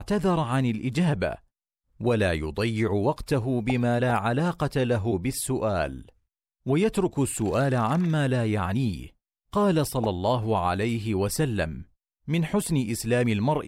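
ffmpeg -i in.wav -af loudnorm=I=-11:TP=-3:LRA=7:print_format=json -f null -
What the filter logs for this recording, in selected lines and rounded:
"input_i" : "-25.8",
"input_tp" : "-12.5",
"input_lra" : "1.2",
"input_thresh" : "-36.1",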